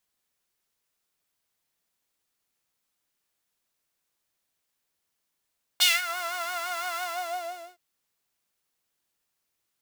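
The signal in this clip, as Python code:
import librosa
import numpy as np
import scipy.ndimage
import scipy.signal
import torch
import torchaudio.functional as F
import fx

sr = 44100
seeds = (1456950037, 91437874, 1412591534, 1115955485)

y = fx.sub_patch_vibrato(sr, seeds[0], note=77, wave='saw', wave2='saw', interval_st=0, detune_cents=16, level2_db=-9.0, sub_db=-12.0, noise_db=-11, kind='highpass', cutoff_hz=460.0, q=2.5, env_oct=3.0, env_decay_s=0.32, env_sustain_pct=40, attack_ms=16.0, decay_s=0.2, sustain_db=-17, release_s=0.78, note_s=1.19, lfo_hz=5.9, vibrato_cents=76)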